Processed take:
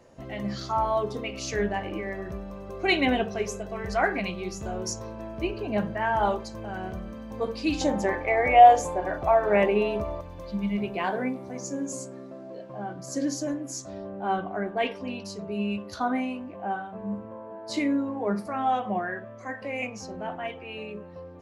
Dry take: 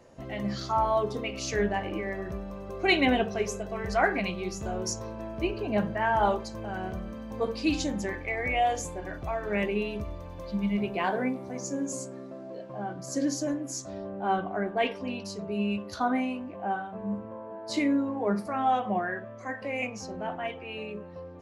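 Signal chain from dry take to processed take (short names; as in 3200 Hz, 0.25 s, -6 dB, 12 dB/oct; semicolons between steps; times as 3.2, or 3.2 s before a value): 7.81–10.21 bell 760 Hz +13 dB 1.9 oct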